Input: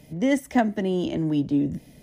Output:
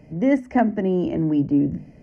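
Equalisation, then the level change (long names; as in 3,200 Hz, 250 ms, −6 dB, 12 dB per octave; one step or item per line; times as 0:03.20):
Butterworth band-reject 3,600 Hz, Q 2.4
head-to-tape spacing loss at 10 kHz 26 dB
mains-hum notches 50/100/150/200/250 Hz
+4.5 dB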